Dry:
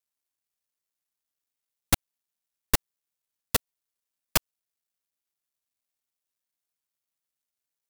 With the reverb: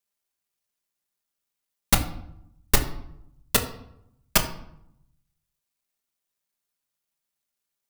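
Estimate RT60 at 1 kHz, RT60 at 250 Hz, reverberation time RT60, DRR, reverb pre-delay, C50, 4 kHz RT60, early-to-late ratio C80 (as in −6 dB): 0.75 s, 1.0 s, 0.75 s, 2.5 dB, 5 ms, 11.0 dB, 0.50 s, 14.0 dB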